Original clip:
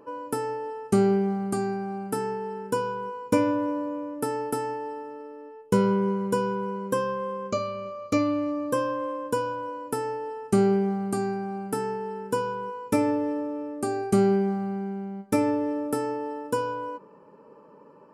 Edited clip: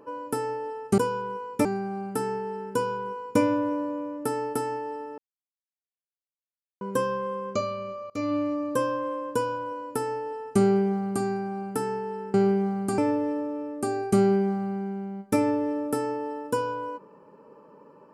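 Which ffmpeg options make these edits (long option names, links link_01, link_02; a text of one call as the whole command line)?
ffmpeg -i in.wav -filter_complex "[0:a]asplit=8[link_01][link_02][link_03][link_04][link_05][link_06][link_07][link_08];[link_01]atrim=end=0.982[link_09];[link_02]atrim=start=12.308:end=12.982[link_10];[link_03]atrim=start=1.618:end=5.15,asetpts=PTS-STARTPTS,afade=type=out:start_time=3.528:duration=0.004:curve=hsin[link_11];[link_04]atrim=start=5.15:end=6.78,asetpts=PTS-STARTPTS,volume=0[link_12];[link_05]atrim=start=6.78:end=8.07,asetpts=PTS-STARTPTS,afade=type=in:duration=0.004:curve=hsin,afade=type=out:start_time=1.286:duration=0.004:curve=hsin:silence=0.0944061[link_13];[link_06]atrim=start=8.07:end=12.312,asetpts=PTS-STARTPTS,afade=type=in:duration=0.26:silence=0.0944061[link_14];[link_07]atrim=start=0.978:end=1.622[link_15];[link_08]atrim=start=12.978[link_16];[link_09][link_10]acrossfade=duration=0.004:curve1=hsin:curve2=hsin[link_17];[link_11][link_12][link_13][link_14]concat=n=4:v=0:a=1[link_18];[link_17][link_18]acrossfade=duration=0.004:curve1=hsin:curve2=hsin[link_19];[link_19][link_15]acrossfade=duration=0.004:curve1=hsin:curve2=hsin[link_20];[link_20][link_16]acrossfade=duration=0.004:curve1=hsin:curve2=hsin" out.wav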